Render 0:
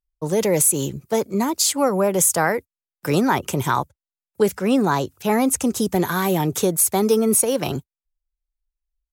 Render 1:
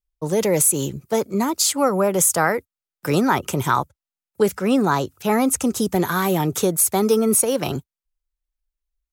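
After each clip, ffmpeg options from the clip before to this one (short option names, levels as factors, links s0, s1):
-af "adynamicequalizer=threshold=0.00794:dfrequency=1300:dqfactor=6.8:tfrequency=1300:tqfactor=6.8:attack=5:release=100:ratio=0.375:range=3:mode=boostabove:tftype=bell"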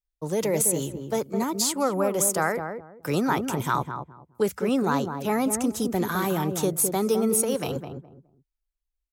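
-filter_complex "[0:a]asplit=2[s0][s1];[s1]adelay=209,lowpass=f=830:p=1,volume=0.562,asplit=2[s2][s3];[s3]adelay=209,lowpass=f=830:p=1,volume=0.25,asplit=2[s4][s5];[s5]adelay=209,lowpass=f=830:p=1,volume=0.25[s6];[s0][s2][s4][s6]amix=inputs=4:normalize=0,volume=0.501"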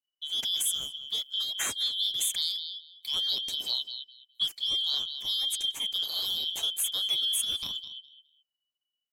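-af "afftfilt=real='real(if(lt(b,272),68*(eq(floor(b/68),0)*2+eq(floor(b/68),1)*3+eq(floor(b/68),2)*0+eq(floor(b/68),3)*1)+mod(b,68),b),0)':imag='imag(if(lt(b,272),68*(eq(floor(b/68),0)*2+eq(floor(b/68),1)*3+eq(floor(b/68),2)*0+eq(floor(b/68),3)*1)+mod(b,68),b),0)':win_size=2048:overlap=0.75,volume=0.501"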